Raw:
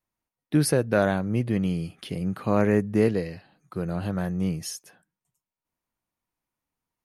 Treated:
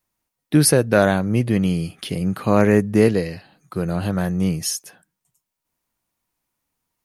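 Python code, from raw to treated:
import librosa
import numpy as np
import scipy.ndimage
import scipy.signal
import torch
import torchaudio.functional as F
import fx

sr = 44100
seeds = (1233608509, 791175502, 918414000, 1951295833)

y = fx.high_shelf(x, sr, hz=3800.0, db=6.0)
y = y * librosa.db_to_amplitude(6.0)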